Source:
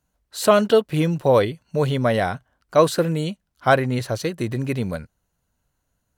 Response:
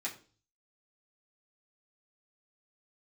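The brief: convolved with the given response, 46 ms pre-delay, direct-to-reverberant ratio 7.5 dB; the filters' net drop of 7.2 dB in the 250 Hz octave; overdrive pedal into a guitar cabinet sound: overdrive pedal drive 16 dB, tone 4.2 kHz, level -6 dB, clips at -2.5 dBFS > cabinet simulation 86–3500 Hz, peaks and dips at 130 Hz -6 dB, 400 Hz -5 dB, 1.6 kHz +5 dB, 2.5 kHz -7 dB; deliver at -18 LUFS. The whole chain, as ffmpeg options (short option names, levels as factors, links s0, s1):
-filter_complex "[0:a]equalizer=f=250:t=o:g=-8.5,asplit=2[s0][s1];[1:a]atrim=start_sample=2205,adelay=46[s2];[s1][s2]afir=irnorm=-1:irlink=0,volume=0.335[s3];[s0][s3]amix=inputs=2:normalize=0,asplit=2[s4][s5];[s5]highpass=f=720:p=1,volume=6.31,asoftclip=type=tanh:threshold=0.75[s6];[s4][s6]amix=inputs=2:normalize=0,lowpass=f=4200:p=1,volume=0.501,highpass=86,equalizer=f=130:t=q:w=4:g=-6,equalizer=f=400:t=q:w=4:g=-5,equalizer=f=1600:t=q:w=4:g=5,equalizer=f=2500:t=q:w=4:g=-7,lowpass=f=3500:w=0.5412,lowpass=f=3500:w=1.3066"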